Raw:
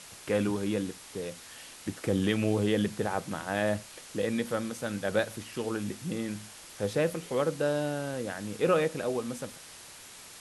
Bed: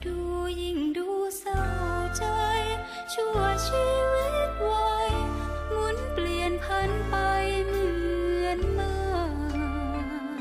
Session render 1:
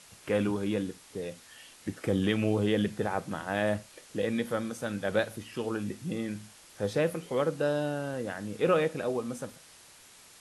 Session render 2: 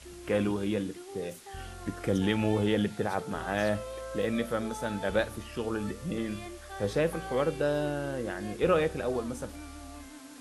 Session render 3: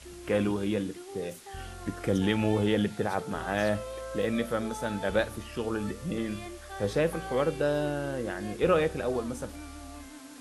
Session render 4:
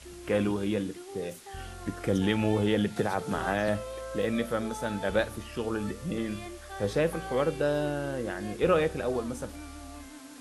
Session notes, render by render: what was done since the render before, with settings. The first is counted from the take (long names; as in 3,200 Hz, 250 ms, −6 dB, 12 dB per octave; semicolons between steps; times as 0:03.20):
noise reduction from a noise print 6 dB
mix in bed −15.5 dB
level +1 dB
0:02.96–0:03.68: multiband upward and downward compressor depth 100%